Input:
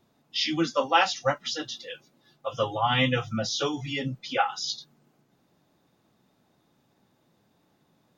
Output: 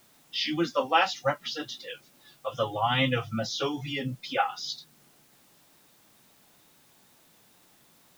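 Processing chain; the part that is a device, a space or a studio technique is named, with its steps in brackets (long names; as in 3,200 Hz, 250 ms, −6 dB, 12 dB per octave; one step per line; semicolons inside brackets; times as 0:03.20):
low-pass filter 5,300 Hz
noise-reduction cassette on a plain deck (one half of a high-frequency compander encoder only; tape wow and flutter; white noise bed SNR 30 dB)
level −1.5 dB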